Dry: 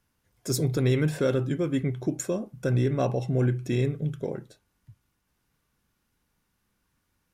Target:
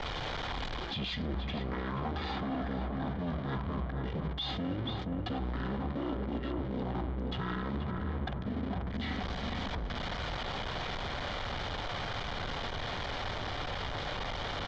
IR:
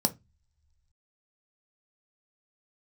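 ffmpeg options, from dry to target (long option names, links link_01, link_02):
-filter_complex "[0:a]aeval=exprs='val(0)+0.5*0.0168*sgn(val(0))':channel_layout=same,anlmdn=0.0251,volume=22.5dB,asoftclip=hard,volume=-22.5dB,lowpass=frequency=7000:width_type=q:width=2.1,bandreject=frequency=5300:width=6.4,asplit=2[link_01][link_02];[link_02]adelay=239,lowpass=frequency=2700:poles=1,volume=-7dB,asplit=2[link_03][link_04];[link_04]adelay=239,lowpass=frequency=2700:poles=1,volume=0.46,asplit=2[link_05][link_06];[link_06]adelay=239,lowpass=frequency=2700:poles=1,volume=0.46,asplit=2[link_07][link_08];[link_08]adelay=239,lowpass=frequency=2700:poles=1,volume=0.46,asplit=2[link_09][link_10];[link_10]adelay=239,lowpass=frequency=2700:poles=1,volume=0.46[link_11];[link_01][link_03][link_05][link_07][link_09][link_11]amix=inputs=6:normalize=0,asetrate=22050,aresample=44100,acrossover=split=220|3000[link_12][link_13][link_14];[link_12]acompressor=threshold=-34dB:ratio=10[link_15];[link_15][link_13][link_14]amix=inputs=3:normalize=0,alimiter=level_in=2dB:limit=-24dB:level=0:latency=1:release=40,volume=-2dB,equalizer=frequency=1000:width=0.47:gain=4.5,areverse,acompressor=threshold=-41dB:ratio=6,areverse,adynamicequalizer=threshold=0.00126:dfrequency=2500:dqfactor=0.7:tfrequency=2500:tqfactor=0.7:attack=5:release=100:ratio=0.375:range=1.5:mode=cutabove:tftype=highshelf,volume=8.5dB"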